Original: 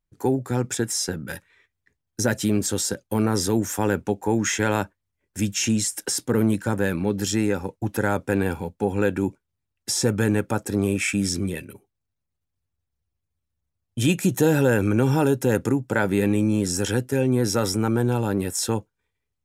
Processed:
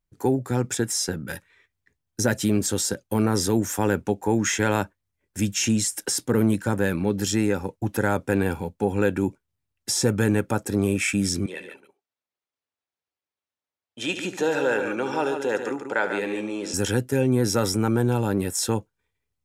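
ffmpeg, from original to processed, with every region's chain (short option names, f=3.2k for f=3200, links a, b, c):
-filter_complex "[0:a]asettb=1/sr,asplit=3[a][b][c];[a]atrim=end=11.464[d];[b]atrim=start=11.46:end=16.74,asetpts=PTS-STARTPTS,afade=t=in:d=0.004:c=qsin,afade=t=out:st=5.276:d=0.004:c=qsin,highpass=480,lowpass=5k,aecho=1:1:71|143:0.266|0.422,atrim=end_sample=232848[e];[c]atrim=start=16.736[f];[d][e]acrossfade=d=0.004:c1=hsin:c2=qsin[g];[g][f]acrossfade=d=0.004:c1=qsin:c2=hsin"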